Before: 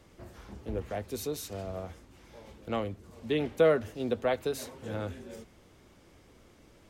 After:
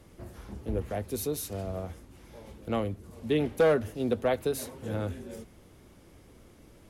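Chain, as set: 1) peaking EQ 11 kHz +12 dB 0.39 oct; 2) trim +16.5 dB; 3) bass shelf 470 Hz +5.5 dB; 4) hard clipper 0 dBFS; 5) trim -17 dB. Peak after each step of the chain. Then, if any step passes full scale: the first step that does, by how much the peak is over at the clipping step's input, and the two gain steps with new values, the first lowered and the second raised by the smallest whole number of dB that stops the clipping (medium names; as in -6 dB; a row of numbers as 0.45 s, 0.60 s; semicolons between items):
-12.5 dBFS, +4.0 dBFS, +7.0 dBFS, 0.0 dBFS, -17.0 dBFS; step 2, 7.0 dB; step 2 +9.5 dB, step 5 -10 dB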